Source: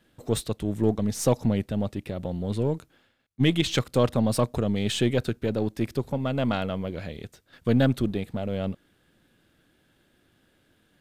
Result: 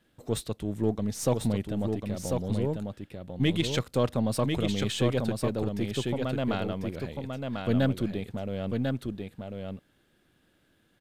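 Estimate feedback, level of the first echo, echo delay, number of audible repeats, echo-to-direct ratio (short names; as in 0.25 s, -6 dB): no steady repeat, -4.5 dB, 1.045 s, 1, -4.5 dB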